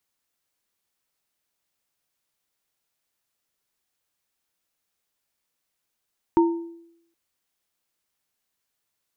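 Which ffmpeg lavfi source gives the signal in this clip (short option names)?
-f lavfi -i "aevalsrc='0.237*pow(10,-3*t/0.77)*sin(2*PI*336*t)+0.119*pow(10,-3*t/0.43)*sin(2*PI*920*t)':d=0.77:s=44100"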